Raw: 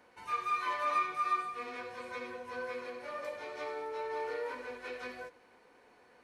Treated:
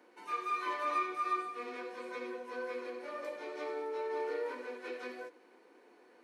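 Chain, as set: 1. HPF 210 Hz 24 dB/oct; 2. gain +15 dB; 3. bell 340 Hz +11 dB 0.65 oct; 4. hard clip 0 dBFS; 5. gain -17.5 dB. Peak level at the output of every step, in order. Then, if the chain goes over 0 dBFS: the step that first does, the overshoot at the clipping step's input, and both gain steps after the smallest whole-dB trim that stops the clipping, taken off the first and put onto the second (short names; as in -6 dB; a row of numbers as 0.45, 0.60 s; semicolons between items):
-20.5, -5.5, -5.0, -5.0, -22.5 dBFS; no overload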